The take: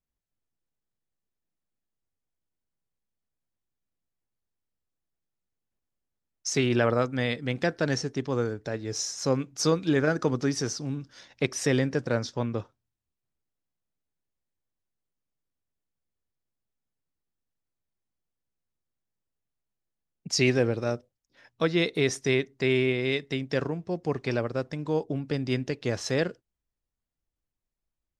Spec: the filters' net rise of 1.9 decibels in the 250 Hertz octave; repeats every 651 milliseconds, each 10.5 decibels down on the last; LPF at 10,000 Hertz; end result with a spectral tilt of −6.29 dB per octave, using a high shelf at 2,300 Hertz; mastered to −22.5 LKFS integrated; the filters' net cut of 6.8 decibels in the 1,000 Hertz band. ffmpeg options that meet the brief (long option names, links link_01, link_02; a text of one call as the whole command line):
ffmpeg -i in.wav -af "lowpass=10000,equalizer=frequency=250:width_type=o:gain=3,equalizer=frequency=1000:width_type=o:gain=-9,highshelf=frequency=2300:gain=-5,aecho=1:1:651|1302|1953:0.299|0.0896|0.0269,volume=5.5dB" out.wav